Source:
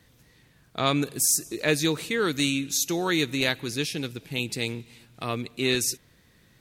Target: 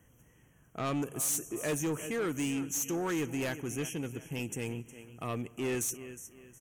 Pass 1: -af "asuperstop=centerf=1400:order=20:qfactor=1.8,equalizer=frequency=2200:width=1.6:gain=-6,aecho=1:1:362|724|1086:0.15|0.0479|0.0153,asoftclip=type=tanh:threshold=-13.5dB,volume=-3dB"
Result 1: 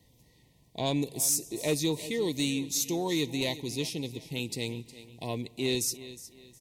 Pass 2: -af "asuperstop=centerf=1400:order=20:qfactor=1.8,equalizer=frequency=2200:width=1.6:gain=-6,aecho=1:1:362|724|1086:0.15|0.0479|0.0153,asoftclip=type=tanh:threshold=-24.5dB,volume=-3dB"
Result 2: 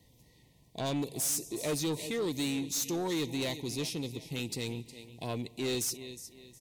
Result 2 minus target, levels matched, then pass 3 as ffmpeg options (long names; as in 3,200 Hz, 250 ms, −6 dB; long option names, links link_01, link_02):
4,000 Hz band +8.0 dB
-af "asuperstop=centerf=4300:order=20:qfactor=1.8,equalizer=frequency=2200:width=1.6:gain=-6,aecho=1:1:362|724|1086:0.15|0.0479|0.0153,asoftclip=type=tanh:threshold=-24.5dB,volume=-3dB"